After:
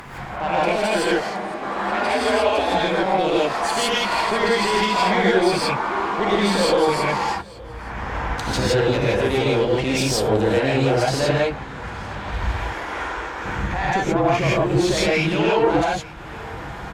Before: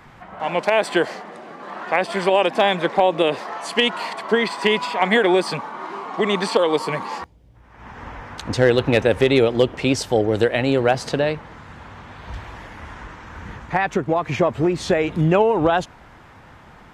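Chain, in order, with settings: 14.97–15.47 s: frequency weighting D; gate -37 dBFS, range -8 dB; 12.56–13.44 s: resonant low shelf 250 Hz -12.5 dB, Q 1.5; in parallel at +2 dB: compression, threshold -25 dBFS, peak gain reduction 14 dB; on the sum: peak limiter -9 dBFS, peak gain reduction 9.5 dB; upward compressor, threshold -23 dBFS; valve stage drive 14 dB, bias 0.5; 1.91–2.72 s: frequency shift +58 Hz; on a send: delay 870 ms -22.5 dB; on the sum: gated-style reverb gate 190 ms rising, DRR -6.5 dB; trim -3.5 dB

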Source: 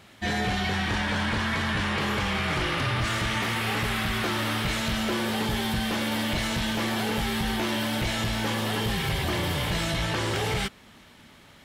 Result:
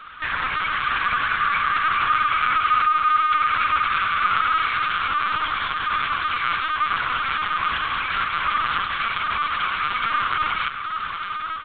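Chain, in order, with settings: dynamic bell 2.2 kHz, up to +6 dB, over -48 dBFS, Q 2.9; level rider gain up to 13 dB; peak limiter -9.5 dBFS, peak gain reduction 6 dB; compression 4:1, threshold -26 dBFS, peak gain reduction 10 dB; saturation -30.5 dBFS, distortion -9 dB; resonant high-pass 1.2 kHz, resonance Q 8.7; square tremolo 10 Hz, depth 65%, duty 90%; frequency shift +40 Hz; Butterworth band-stop 2 kHz, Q 7; distance through air 63 m; delay 630 ms -13.5 dB; LPC vocoder at 8 kHz pitch kept; trim +7.5 dB

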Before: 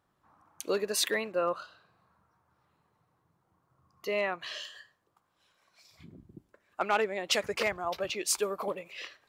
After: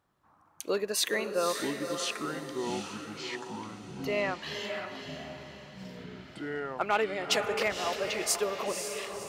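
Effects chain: echo that smears into a reverb 524 ms, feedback 44%, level -6.5 dB; ever faster or slower copies 641 ms, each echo -6 st, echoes 3, each echo -6 dB

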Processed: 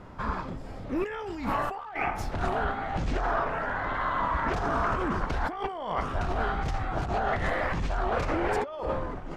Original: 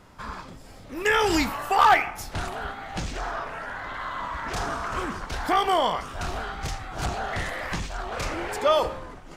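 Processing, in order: low-pass 1.1 kHz 6 dB/octave; compressor with a negative ratio -33 dBFS, ratio -1; trim +3.5 dB

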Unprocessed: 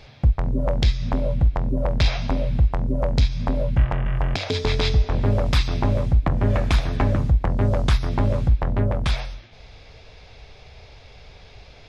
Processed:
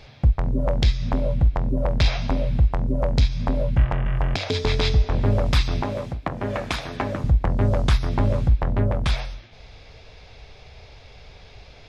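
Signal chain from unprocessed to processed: 5.82–7.24 s: high-pass 330 Hz 6 dB/octave

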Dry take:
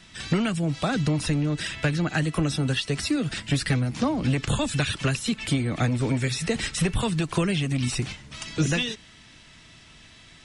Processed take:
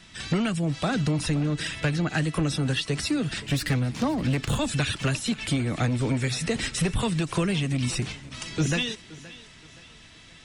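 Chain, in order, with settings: 3.43–4.59 s: self-modulated delay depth 0.065 ms; saturation -15 dBFS, distortion -23 dB; thinning echo 522 ms, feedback 43%, high-pass 170 Hz, level -18 dB

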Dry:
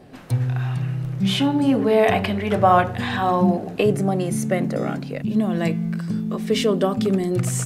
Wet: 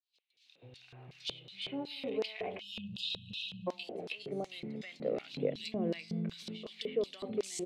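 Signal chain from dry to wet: fade-in on the opening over 2.51 s; high-order bell 3 kHz +15 dB 1.3 oct; bands offset in time highs, lows 320 ms, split 2.8 kHz; 2.61–3.67 s: spectral selection erased 230–2500 Hz; compression, threshold -25 dBFS, peak gain reduction 12.5 dB; 5.33–6.34 s: bass shelf 350 Hz +10 dB; LFO band-pass square 2.7 Hz 470–5400 Hz

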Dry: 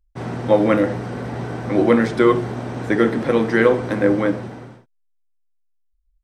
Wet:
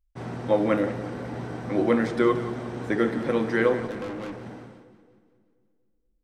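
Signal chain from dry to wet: 3.87–4.46 s: valve stage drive 26 dB, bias 0.65; two-band feedback delay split 490 Hz, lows 237 ms, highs 177 ms, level -13.5 dB; trim -7 dB

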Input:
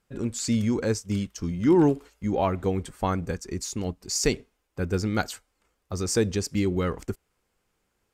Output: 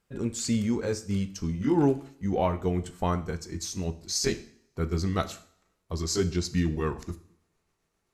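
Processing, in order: pitch bend over the whole clip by -3 st starting unshifted; two-slope reverb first 0.54 s, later 1.6 s, from -27 dB, DRR 9.5 dB; trim -1.5 dB

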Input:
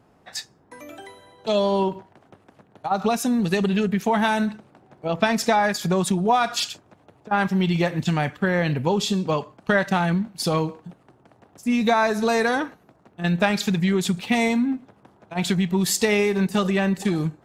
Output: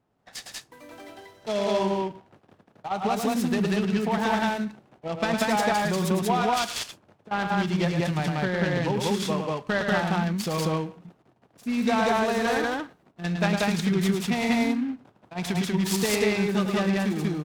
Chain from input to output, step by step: gate -51 dBFS, range -9 dB; on a send: loudspeakers at several distances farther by 37 m -6 dB, 65 m 0 dB; on the sum: delay time shaken by noise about 1.7 kHz, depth 0.031 ms; trim -6.5 dB

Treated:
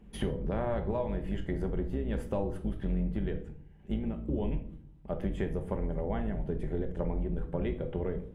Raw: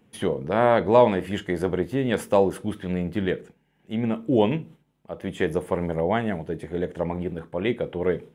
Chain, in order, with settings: octave divider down 2 oct, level -1 dB; tilt EQ -2 dB/octave; compression 10:1, threshold -28 dBFS, peak gain reduction 19.5 dB; simulated room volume 730 m³, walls furnished, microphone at 1.2 m; trim -2 dB

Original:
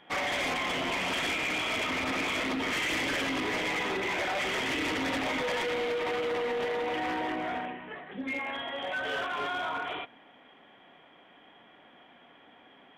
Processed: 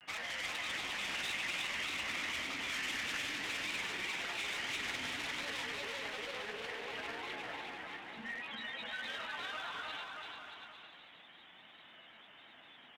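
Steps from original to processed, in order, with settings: amplifier tone stack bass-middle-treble 5-5-5; Chebyshev shaper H 6 -35 dB, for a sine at -30.5 dBFS; in parallel at 0 dB: compression, threshold -52 dBFS, peak gain reduction 14 dB; on the sum: granulator, spray 23 ms, pitch spread up and down by 3 st; upward compressor, threshold -53 dBFS; on a send: bouncing-ball echo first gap 350 ms, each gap 0.8×, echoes 5

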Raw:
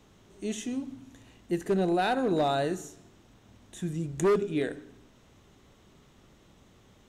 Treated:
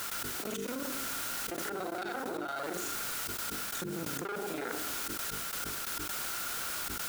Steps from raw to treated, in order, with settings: time reversed locally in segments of 36 ms; half-wave rectifier; high-pass 250 Hz 12 dB/octave; word length cut 8-bit, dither triangular; trance gate ".x..x.xxxxxxx.x." 133 bpm -24 dB; peak limiter -27 dBFS, peak gain reduction 7 dB; peaking EQ 1.4 kHz +15 dB 0.22 oct; hum notches 50/100/150/200/250/300/350/400/450 Hz; level flattener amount 100%; trim -6.5 dB

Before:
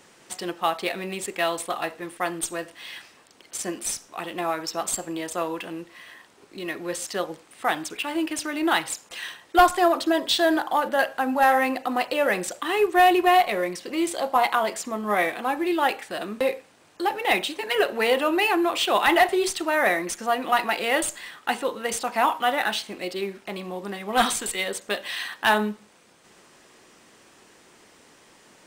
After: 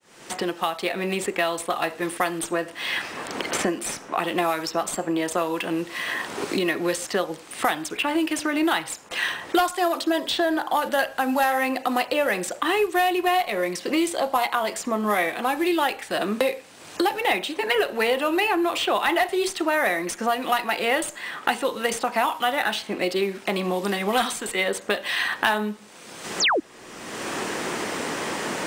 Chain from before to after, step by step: fade-in on the opening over 2.80 s; painted sound fall, 26.40–26.60 s, 260–7700 Hz -23 dBFS; three bands compressed up and down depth 100%

